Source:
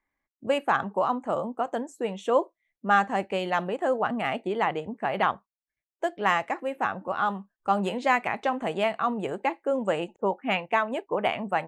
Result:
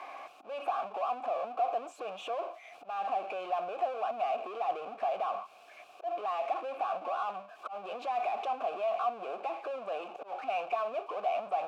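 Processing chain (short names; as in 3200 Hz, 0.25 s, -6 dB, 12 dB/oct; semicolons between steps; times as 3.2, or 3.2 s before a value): HPF 130 Hz 12 dB/oct; power-law curve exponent 0.35; limiter -14.5 dBFS, peak gain reduction 6 dB; auto swell 0.293 s; compressor 3:1, threshold -30 dBFS, peak gain reduction 10 dB; vowel filter a; tone controls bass -11 dB, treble -1 dB; gain +3.5 dB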